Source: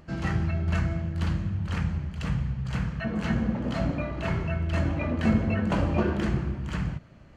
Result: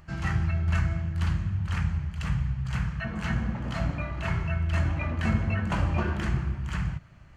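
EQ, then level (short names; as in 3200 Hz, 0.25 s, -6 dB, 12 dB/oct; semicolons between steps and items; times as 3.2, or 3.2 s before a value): graphic EQ 250/500/4000 Hz -9/-10/-4 dB; +2.5 dB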